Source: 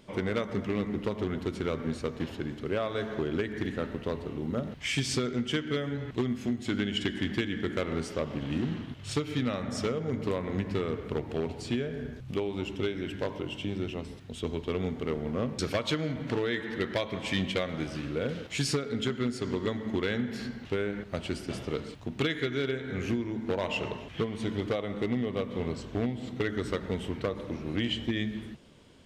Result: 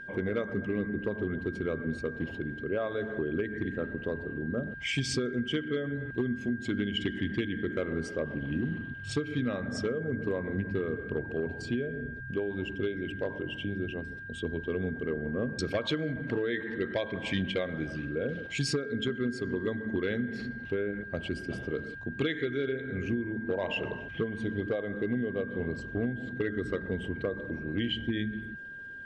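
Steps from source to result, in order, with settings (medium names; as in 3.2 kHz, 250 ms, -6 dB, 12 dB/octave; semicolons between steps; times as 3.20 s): resonances exaggerated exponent 1.5; whistle 1.6 kHz -40 dBFS; trim -1 dB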